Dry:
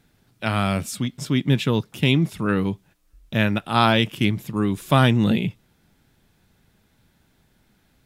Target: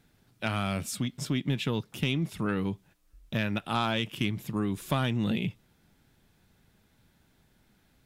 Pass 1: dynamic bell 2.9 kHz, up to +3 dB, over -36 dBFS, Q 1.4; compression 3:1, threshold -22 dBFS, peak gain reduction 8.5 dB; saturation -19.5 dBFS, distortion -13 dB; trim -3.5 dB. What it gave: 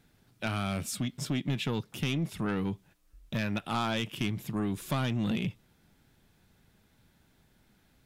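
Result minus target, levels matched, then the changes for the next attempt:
saturation: distortion +11 dB
change: saturation -11 dBFS, distortion -23 dB

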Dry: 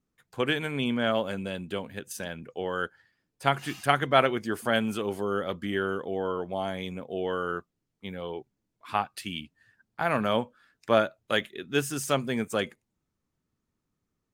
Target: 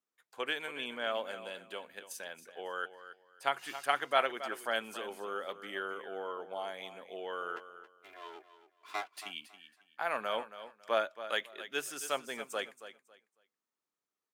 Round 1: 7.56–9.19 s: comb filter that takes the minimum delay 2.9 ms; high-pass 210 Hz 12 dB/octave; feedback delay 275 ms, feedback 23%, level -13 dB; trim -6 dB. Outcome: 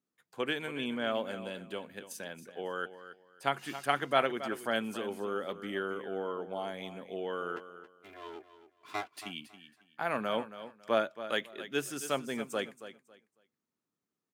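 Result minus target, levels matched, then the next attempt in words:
250 Hz band +9.0 dB
7.56–9.19 s: comb filter that takes the minimum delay 2.9 ms; high-pass 550 Hz 12 dB/octave; feedback delay 275 ms, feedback 23%, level -13 dB; trim -6 dB

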